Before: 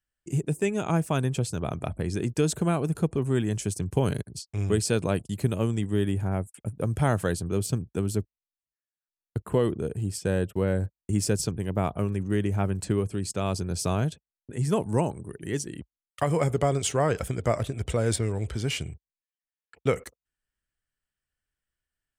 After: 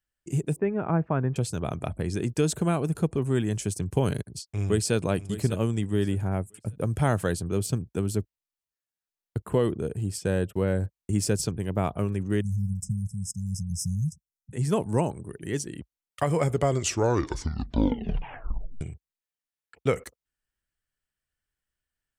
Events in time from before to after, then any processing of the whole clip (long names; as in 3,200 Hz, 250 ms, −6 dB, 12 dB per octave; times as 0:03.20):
0:00.56–0:01.36: low-pass filter 1,800 Hz 24 dB per octave
0:04.45–0:04.95: delay throw 600 ms, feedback 25%, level −13 dB
0:12.41–0:14.53: linear-phase brick-wall band-stop 210–5,000 Hz
0:16.63: tape stop 2.18 s